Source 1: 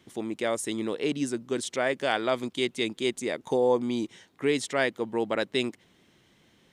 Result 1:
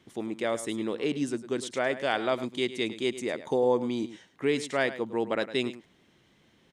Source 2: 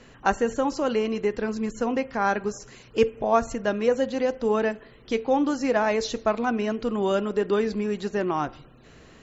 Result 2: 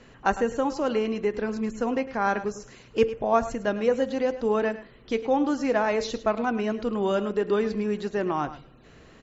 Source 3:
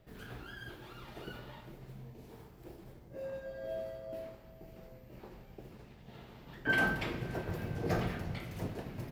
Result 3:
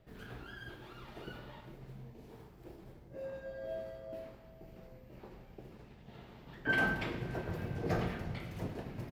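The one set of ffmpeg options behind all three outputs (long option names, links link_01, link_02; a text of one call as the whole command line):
ffmpeg -i in.wav -af "highshelf=frequency=6200:gain=-6,aecho=1:1:105:0.2,volume=-1dB" out.wav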